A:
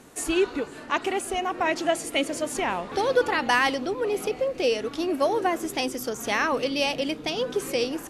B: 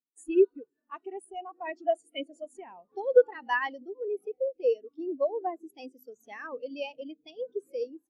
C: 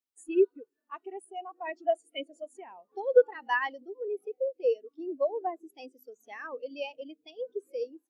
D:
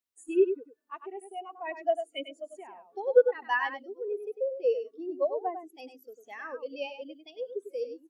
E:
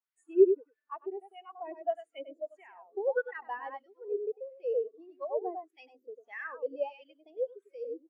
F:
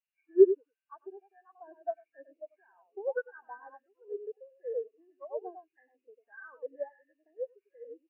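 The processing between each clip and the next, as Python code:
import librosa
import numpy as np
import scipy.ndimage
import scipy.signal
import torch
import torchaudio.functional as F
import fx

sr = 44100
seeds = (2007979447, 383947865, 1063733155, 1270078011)

y1 = fx.high_shelf(x, sr, hz=3900.0, db=9.5)
y1 = fx.spectral_expand(y1, sr, expansion=2.5)
y1 = y1 * 10.0 ** (-2.0 / 20.0)
y2 = fx.bass_treble(y1, sr, bass_db=-11, treble_db=-1)
y3 = y2 + 10.0 ** (-9.0 / 20.0) * np.pad(y2, (int(99 * sr / 1000.0), 0))[:len(y2)]
y4 = fx.wah_lfo(y3, sr, hz=1.6, low_hz=390.0, high_hz=2000.0, q=2.8)
y4 = y4 * 10.0 ** (4.5 / 20.0)
y5 = fx.freq_compress(y4, sr, knee_hz=1500.0, ratio=4.0)
y5 = fx.upward_expand(y5, sr, threshold_db=-43.0, expansion=1.5)
y5 = y5 * 10.0 ** (2.5 / 20.0)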